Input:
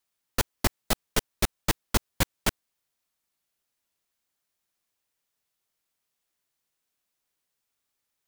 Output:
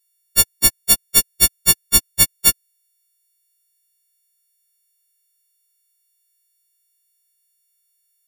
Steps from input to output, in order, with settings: frequency quantiser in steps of 4 st; bell 970 Hz -11 dB 2.6 oct; sample leveller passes 1; gain +2 dB

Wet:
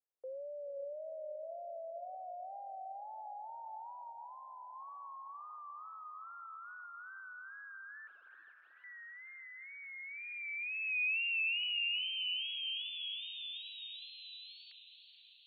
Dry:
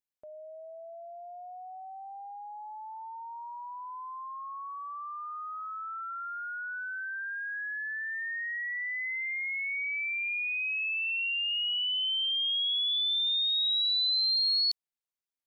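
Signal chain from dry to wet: 3.89–4.75 comb 2.3 ms, depth 38%; in parallel at +3 dB: compressor 10:1, threshold -39 dBFS, peak gain reduction 13.5 dB; on the sum: wow and flutter 70 cents; band-pass sweep 540 Hz -> 2300 Hz, 9.53–11.05; 8.07–8.84 wrapped overs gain 51 dB; diffused feedback echo 0.49 s, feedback 60%, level -10.5 dB; mistuned SSB -73 Hz 480–3100 Hz; gain -3.5 dB

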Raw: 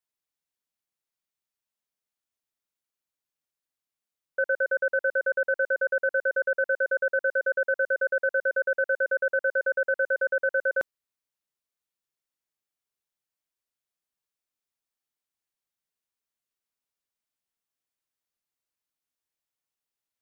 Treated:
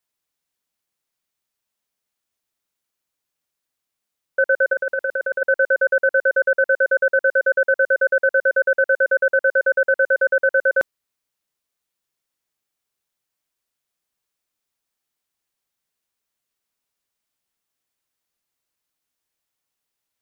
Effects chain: 4.73–5.42 negative-ratio compressor -30 dBFS, ratio -1; gain +8 dB

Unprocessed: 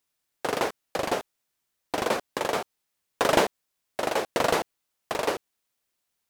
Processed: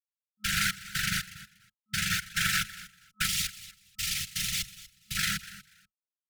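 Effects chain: rotary speaker horn 1.1 Hz, later 5 Hz, at 3.7; gate with hold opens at -28 dBFS; sample leveller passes 1; fuzz box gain 38 dB, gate -41 dBFS; 3.26–5.17 fixed phaser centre 620 Hz, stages 4; on a send: feedback echo 0.241 s, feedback 18%, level -17 dB; on the sum: whisperiser; FFT band-reject 210–1300 Hz; gain -7 dB

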